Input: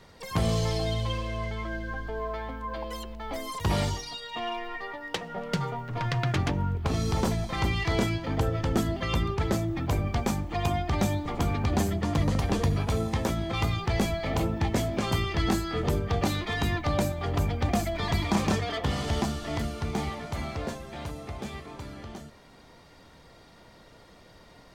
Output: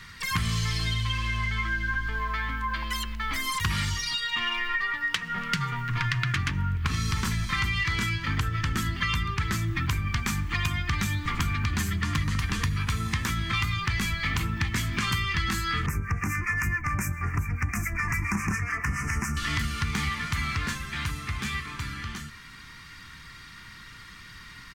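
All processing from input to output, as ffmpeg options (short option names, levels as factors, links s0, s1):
-filter_complex "[0:a]asettb=1/sr,asplit=3[s0][s1][s2];[s0]atrim=end=15.864[s3];[s1]atrim=start=15.86:end=19.37,asetpts=PTS-STARTPTS,afade=t=in:d=0.004:c=qsin,afade=t=out:st=3.506:d=0.004:c=qsin,acrossover=split=1000[s4][s5];[s4]aeval=exprs='val(0)*(1-0.7/2+0.7/2*cos(2*PI*7.2*n/s))':c=same[s6];[s5]aeval=exprs='val(0)*(1-0.7/2-0.7/2*cos(2*PI*7.2*n/s))':c=same[s7];[s6][s7]amix=inputs=2:normalize=0,asuperstop=centerf=3700:order=8:qfactor=1.2[s8];[s2]atrim=start=19.366[s9];[s3][s8]acrossfade=d=0.004:c1=hsin:c2=qsin[s10];[s10][s9]acrossfade=d=0.004:c1=qsin:c2=hsin,firequalizer=gain_entry='entry(120,0);entry(610,-26);entry(1100,2);entry(1800,8);entry(3600,3)':delay=0.05:min_phase=1,acompressor=threshold=0.0282:ratio=6,volume=2.24"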